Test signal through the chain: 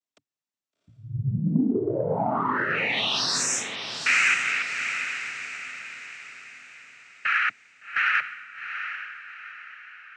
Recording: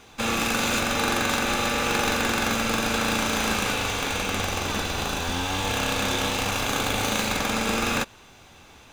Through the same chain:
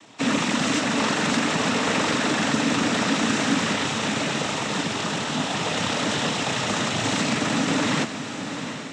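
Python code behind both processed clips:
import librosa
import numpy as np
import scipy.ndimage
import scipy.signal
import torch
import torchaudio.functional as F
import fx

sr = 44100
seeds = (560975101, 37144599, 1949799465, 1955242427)

y = fx.peak_eq(x, sr, hz=220.0, db=6.5, octaves=0.43)
y = fx.noise_vocoder(y, sr, seeds[0], bands=12)
y = fx.cheby_harmonics(y, sr, harmonics=(5,), levels_db=(-32,), full_scale_db=-9.0)
y = fx.echo_diffused(y, sr, ms=761, feedback_pct=42, wet_db=-8.5)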